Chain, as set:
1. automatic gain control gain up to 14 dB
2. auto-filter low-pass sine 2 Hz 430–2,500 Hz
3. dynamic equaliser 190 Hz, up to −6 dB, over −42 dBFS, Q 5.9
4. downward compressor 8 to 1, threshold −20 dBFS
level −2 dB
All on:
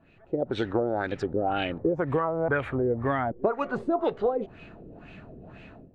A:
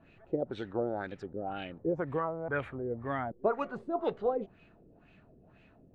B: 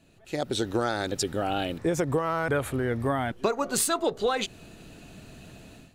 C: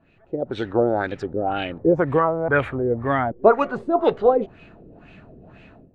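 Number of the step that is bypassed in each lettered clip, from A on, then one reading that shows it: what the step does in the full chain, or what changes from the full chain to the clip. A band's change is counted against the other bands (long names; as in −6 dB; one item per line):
1, change in integrated loudness −7.0 LU
2, 4 kHz band +9.0 dB
4, average gain reduction 3.5 dB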